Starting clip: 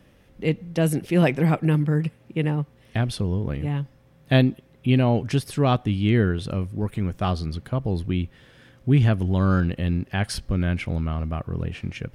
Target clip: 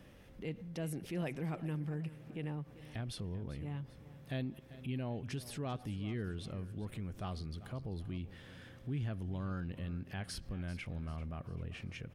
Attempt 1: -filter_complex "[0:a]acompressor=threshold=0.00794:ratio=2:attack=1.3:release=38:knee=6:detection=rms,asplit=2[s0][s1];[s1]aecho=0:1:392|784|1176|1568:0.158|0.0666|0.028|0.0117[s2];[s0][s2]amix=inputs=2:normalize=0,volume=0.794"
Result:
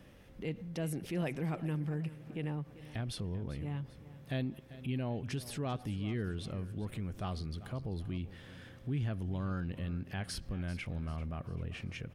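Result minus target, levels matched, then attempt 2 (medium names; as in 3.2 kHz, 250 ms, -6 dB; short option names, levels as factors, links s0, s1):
compression: peak gain reduction -3 dB
-filter_complex "[0:a]acompressor=threshold=0.00398:ratio=2:attack=1.3:release=38:knee=6:detection=rms,asplit=2[s0][s1];[s1]aecho=0:1:392|784|1176|1568:0.158|0.0666|0.028|0.0117[s2];[s0][s2]amix=inputs=2:normalize=0,volume=0.794"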